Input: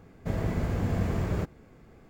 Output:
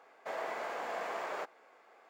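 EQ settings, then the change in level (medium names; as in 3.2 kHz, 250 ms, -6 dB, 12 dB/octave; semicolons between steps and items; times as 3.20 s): ladder high-pass 560 Hz, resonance 25%; low-pass 3.7 kHz 6 dB/octave; +7.5 dB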